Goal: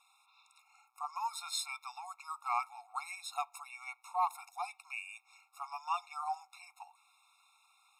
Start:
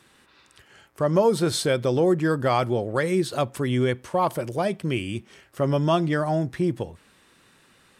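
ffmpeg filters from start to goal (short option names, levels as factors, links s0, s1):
-filter_complex "[0:a]asettb=1/sr,asplit=3[s0][s1][s2];[s0]atrim=end=1.054[s3];[s1]atrim=start=1.05:end=2.84,asetpts=PTS-STARTPTS,afade=t=in:d=0.004:c=qsin,afade=t=out:st=1.786:d=0.004:c=qsin,equalizer=f=760:w=7.7:g=-10[s4];[s2]atrim=start=2.836[s5];[s3][s4]acrossfade=d=0.004:c1=hsin:c2=qsin[s6];[s6][s5]acrossfade=d=0.004:c1=qsin:c2=hsin,afftfilt=real='re*eq(mod(floor(b*sr/1024/710),2),1)':imag='im*eq(mod(floor(b*sr/1024/710),2),1)':win_size=1024:overlap=0.75,volume=0.473"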